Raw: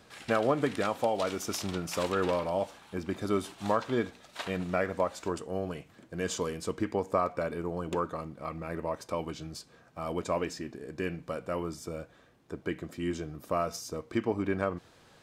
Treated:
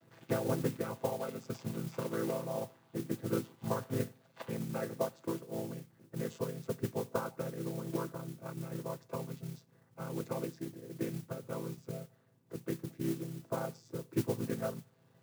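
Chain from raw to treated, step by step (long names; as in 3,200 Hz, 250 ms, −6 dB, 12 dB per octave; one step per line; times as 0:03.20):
channel vocoder with a chord as carrier minor triad, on A2
transient designer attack +4 dB, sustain −1 dB
noise that follows the level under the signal 16 dB
level −6 dB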